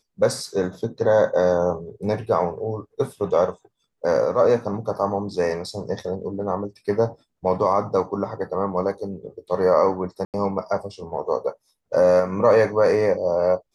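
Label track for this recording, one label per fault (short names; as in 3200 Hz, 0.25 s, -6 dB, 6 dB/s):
10.250000	10.340000	gap 88 ms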